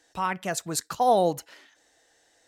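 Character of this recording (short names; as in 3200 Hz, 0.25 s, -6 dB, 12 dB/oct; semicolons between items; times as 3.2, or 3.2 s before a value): noise floor -65 dBFS; spectral tilt -3.5 dB/oct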